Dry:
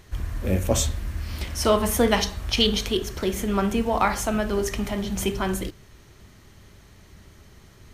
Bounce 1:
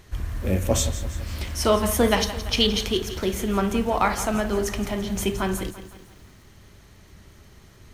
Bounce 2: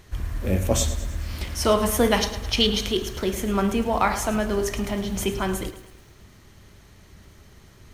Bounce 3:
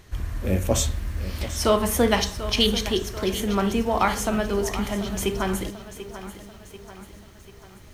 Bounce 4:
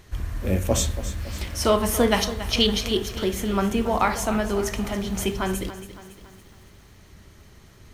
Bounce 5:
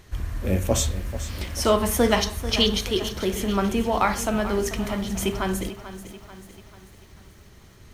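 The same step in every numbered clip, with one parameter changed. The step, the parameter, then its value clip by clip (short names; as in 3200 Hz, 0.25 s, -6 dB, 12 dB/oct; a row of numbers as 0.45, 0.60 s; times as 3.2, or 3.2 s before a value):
lo-fi delay, time: 0.169, 0.107, 0.739, 0.28, 0.439 s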